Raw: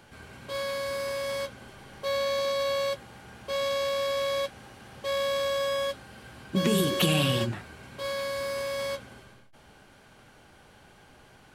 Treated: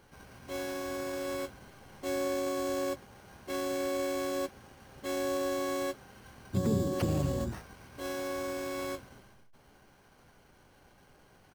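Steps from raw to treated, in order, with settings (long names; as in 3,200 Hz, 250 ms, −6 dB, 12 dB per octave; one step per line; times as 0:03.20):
treble cut that deepens with the level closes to 990 Hz, closed at −21.5 dBFS
bad sample-rate conversion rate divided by 6×, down filtered, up hold
in parallel at −12 dB: dead-zone distortion −48 dBFS
on the sum: pitch-shifted copies added −12 semitones −5 dB, −7 semitones −4 dB
level −8 dB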